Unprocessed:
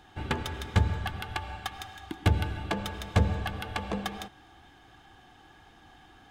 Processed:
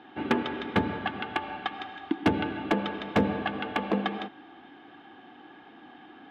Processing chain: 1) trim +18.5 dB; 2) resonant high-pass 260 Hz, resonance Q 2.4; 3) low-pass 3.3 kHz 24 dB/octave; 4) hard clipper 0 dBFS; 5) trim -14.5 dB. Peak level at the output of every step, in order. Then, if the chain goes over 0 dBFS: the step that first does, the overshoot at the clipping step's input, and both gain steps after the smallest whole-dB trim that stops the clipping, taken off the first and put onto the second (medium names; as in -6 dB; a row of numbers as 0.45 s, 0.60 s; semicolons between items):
+8.5 dBFS, +8.5 dBFS, +7.0 dBFS, 0.0 dBFS, -14.5 dBFS; step 1, 7.0 dB; step 1 +11.5 dB, step 5 -7.5 dB